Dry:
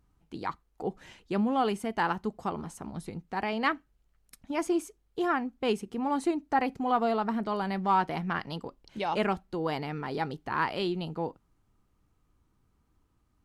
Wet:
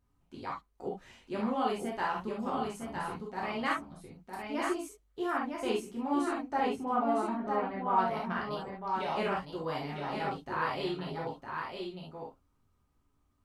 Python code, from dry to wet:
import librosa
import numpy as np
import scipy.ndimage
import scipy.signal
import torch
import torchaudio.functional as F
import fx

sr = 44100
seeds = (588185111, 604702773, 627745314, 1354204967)

y = fx.lowpass(x, sr, hz=1800.0, slope=12, at=(6.61, 7.98))
y = y + 10.0 ** (-5.0 / 20.0) * np.pad(y, (int(958 * sr / 1000.0), 0))[:len(y)]
y = fx.rev_gated(y, sr, seeds[0], gate_ms=90, shape='flat', drr_db=-4.0)
y = y * 10.0 ** (-9.0 / 20.0)